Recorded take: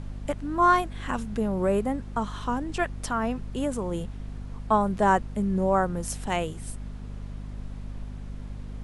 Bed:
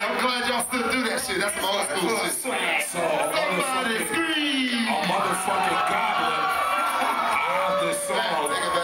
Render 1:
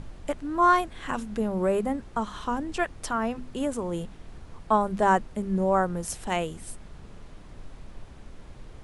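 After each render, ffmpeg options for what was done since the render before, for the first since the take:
-af "bandreject=f=50:t=h:w=6,bandreject=f=100:t=h:w=6,bandreject=f=150:t=h:w=6,bandreject=f=200:t=h:w=6,bandreject=f=250:t=h:w=6"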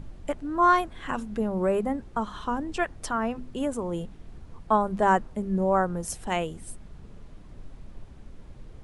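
-af "afftdn=nr=6:nf=-47"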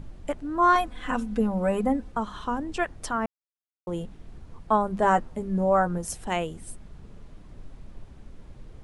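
-filter_complex "[0:a]asettb=1/sr,asplit=3[s0][s1][s2];[s0]atrim=end=0.754[s3];[s1]atrim=start=0.75:end=2.12,asetpts=PTS-STARTPTS,afade=t=in:d=0.004:c=qsin,afade=t=out:st=1.366:d=0.004:c=qsin,aecho=1:1:4:0.77,atrim=end_sample=60417[s4];[s2]atrim=start=2.116[s5];[s3][s4]acrossfade=d=0.004:c1=hsin:c2=qsin[s6];[s6][s5]acrossfade=d=0.004:c1=qsin:c2=hsin,asettb=1/sr,asplit=3[s7][s8][s9];[s7]atrim=end=5.034[s10];[s8]atrim=start=5.03:end=5.98,asetpts=PTS-STARTPTS,afade=t=in:d=0.004:c=qsin,afade=t=out:st=0.946:d=0.004:c=qsin,asplit=2[s11][s12];[s12]adelay=12,volume=0.473[s13];[s11][s13]amix=inputs=2:normalize=0,atrim=end_sample=41895[s14];[s9]atrim=start=5.976[s15];[s10][s14]acrossfade=d=0.004:c1=hsin:c2=qsin[s16];[s16][s15]acrossfade=d=0.004:c1=qsin:c2=hsin,asplit=3[s17][s18][s19];[s17]atrim=end=3.26,asetpts=PTS-STARTPTS,afade=t=out:st=3.256:d=0.004:c=hsin[s20];[s18]atrim=start=3.26:end=3.87,asetpts=PTS-STARTPTS,volume=0[s21];[s19]atrim=start=3.87,asetpts=PTS-STARTPTS,afade=t=in:d=0.004:c=hsin[s22];[s20][s21][s22]concat=n=3:v=0:a=1"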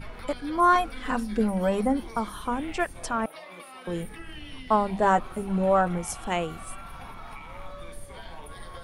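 -filter_complex "[1:a]volume=0.0944[s0];[0:a][s0]amix=inputs=2:normalize=0"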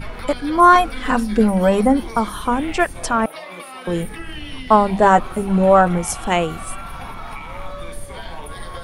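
-af "volume=2.99,alimiter=limit=0.794:level=0:latency=1"

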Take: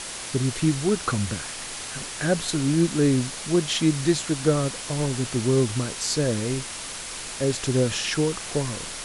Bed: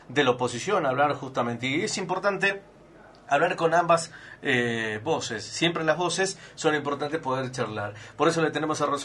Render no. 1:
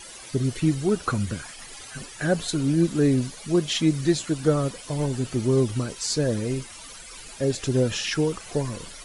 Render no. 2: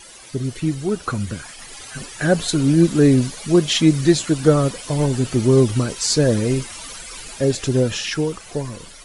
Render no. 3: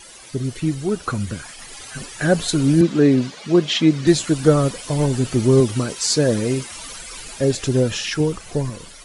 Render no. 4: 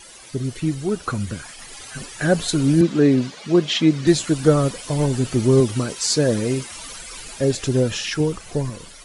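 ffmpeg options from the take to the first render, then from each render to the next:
-af "afftdn=nr=14:nf=-35"
-af "dynaudnorm=f=350:g=11:m=3.76"
-filter_complex "[0:a]asettb=1/sr,asplit=3[s0][s1][s2];[s0]atrim=end=2.814[s3];[s1]atrim=start=2.81:end=4.07,asetpts=PTS-STARTPTS,afade=t=in:d=0.004:c=qsin,afade=t=out:st=1.256:d=0.004:c=qsin,highpass=160,lowpass=4700[s4];[s2]atrim=start=4.066[s5];[s3][s4]acrossfade=d=0.004:c1=hsin:c2=qsin[s6];[s6][s5]acrossfade=d=0.004:c1=qsin:c2=hsin,asettb=1/sr,asplit=3[s7][s8][s9];[s7]atrim=end=5.604[s10];[s8]atrim=start=5.6:end=6.72,asetpts=PTS-STARTPTS,afade=t=in:d=0.004:c=qsin,afade=t=out:st=1.116:d=0.004:c=qsin,highpass=f=130:p=1[s11];[s9]atrim=start=6.716[s12];[s10][s11]acrossfade=d=0.004:c1=hsin:c2=qsin[s13];[s13][s12]acrossfade=d=0.004:c1=qsin:c2=hsin,asettb=1/sr,asplit=3[s14][s15][s16];[s14]atrim=end=8.204[s17];[s15]atrim=start=8.2:end=8.7,asetpts=PTS-STARTPTS,afade=t=in:d=0.004:c=qsin,afade=t=out:st=0.496:d=0.004:c=qsin,lowshelf=f=240:g=6.5[s18];[s16]atrim=start=8.696[s19];[s17][s18]acrossfade=d=0.004:c1=hsin:c2=qsin[s20];[s20][s19]acrossfade=d=0.004:c1=qsin:c2=hsin"
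-af "volume=0.891"

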